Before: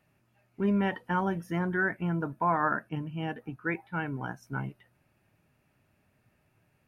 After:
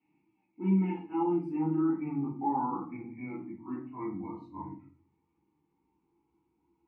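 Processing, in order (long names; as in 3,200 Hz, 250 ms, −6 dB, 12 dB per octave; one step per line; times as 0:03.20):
pitch glide at a constant tempo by −9.5 semitones starting unshifted
formant filter u
hollow resonant body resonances 340/920/3,300 Hz, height 7 dB, ringing for 90 ms
convolution reverb RT60 0.50 s, pre-delay 4 ms, DRR −10.5 dB
level −2 dB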